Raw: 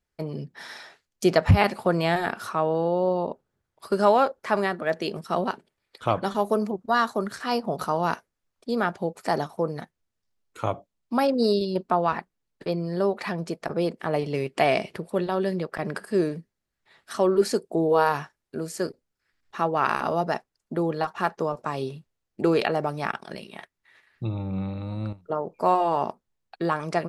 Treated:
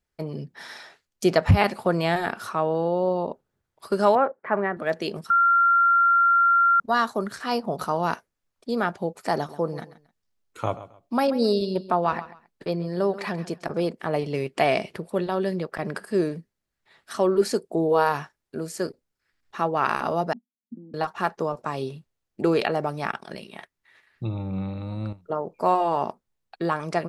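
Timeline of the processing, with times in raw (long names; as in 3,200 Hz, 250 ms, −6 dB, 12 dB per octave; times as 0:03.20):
0:04.15–0:04.77: Chebyshev band-pass filter 130–2,000 Hz, order 3
0:05.30–0:06.80: beep over 1,380 Hz −15 dBFS
0:09.35–0:13.86: repeating echo 134 ms, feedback 24%, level −15.5 dB
0:20.33–0:20.94: flat-topped band-pass 230 Hz, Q 4.3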